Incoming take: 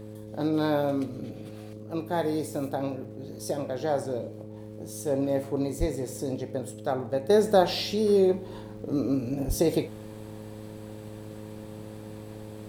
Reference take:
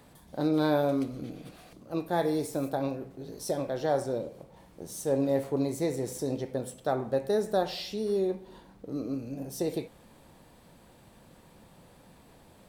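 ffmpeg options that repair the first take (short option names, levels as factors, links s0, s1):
-filter_complex "[0:a]adeclick=t=4,bandreject=f=106.8:t=h:w=4,bandreject=f=213.6:t=h:w=4,bandreject=f=320.4:t=h:w=4,bandreject=f=427.2:t=h:w=4,bandreject=f=534:t=h:w=4,asplit=3[s0][s1][s2];[s0]afade=t=out:st=5.79:d=0.02[s3];[s1]highpass=f=140:w=0.5412,highpass=f=140:w=1.3066,afade=t=in:st=5.79:d=0.02,afade=t=out:st=5.91:d=0.02[s4];[s2]afade=t=in:st=5.91:d=0.02[s5];[s3][s4][s5]amix=inputs=3:normalize=0,asplit=3[s6][s7][s8];[s6]afade=t=out:st=9.47:d=0.02[s9];[s7]highpass=f=140:w=0.5412,highpass=f=140:w=1.3066,afade=t=in:st=9.47:d=0.02,afade=t=out:st=9.59:d=0.02[s10];[s8]afade=t=in:st=9.59:d=0.02[s11];[s9][s10][s11]amix=inputs=3:normalize=0,asetnsamples=n=441:p=0,asendcmd='7.3 volume volume -7dB',volume=1"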